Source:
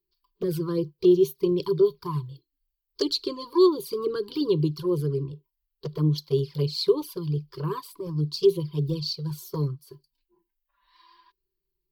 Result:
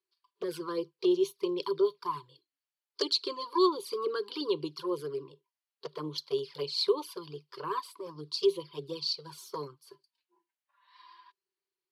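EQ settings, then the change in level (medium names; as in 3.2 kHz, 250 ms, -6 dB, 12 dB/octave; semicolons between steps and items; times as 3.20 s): high-pass 660 Hz 12 dB/octave; Chebyshev low-pass 11 kHz, order 3; treble shelf 5.1 kHz -8 dB; +3.0 dB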